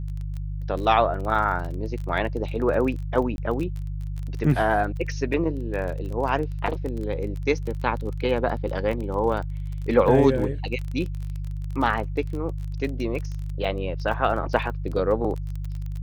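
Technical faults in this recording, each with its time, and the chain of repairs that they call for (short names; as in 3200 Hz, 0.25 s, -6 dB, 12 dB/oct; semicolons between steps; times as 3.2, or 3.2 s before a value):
crackle 25/s -30 dBFS
hum 50 Hz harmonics 3 -30 dBFS
3.36–3.38 gap 20 ms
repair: de-click; de-hum 50 Hz, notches 3; interpolate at 3.36, 20 ms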